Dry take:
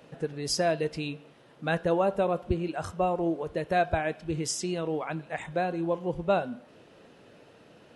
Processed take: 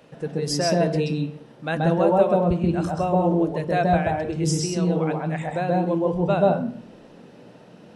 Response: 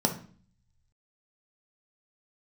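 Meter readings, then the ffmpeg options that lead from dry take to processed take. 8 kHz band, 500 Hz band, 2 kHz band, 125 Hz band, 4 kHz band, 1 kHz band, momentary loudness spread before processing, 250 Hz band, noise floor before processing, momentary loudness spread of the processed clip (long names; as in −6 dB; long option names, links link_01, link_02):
+4.0 dB, +6.5 dB, +3.0 dB, +11.5 dB, +4.0 dB, +6.0 dB, 10 LU, +9.5 dB, −56 dBFS, 9 LU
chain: -filter_complex "[0:a]asplit=2[link_01][link_02];[1:a]atrim=start_sample=2205,adelay=130[link_03];[link_02][link_03]afir=irnorm=-1:irlink=0,volume=-10.5dB[link_04];[link_01][link_04]amix=inputs=2:normalize=0,volume=1.5dB"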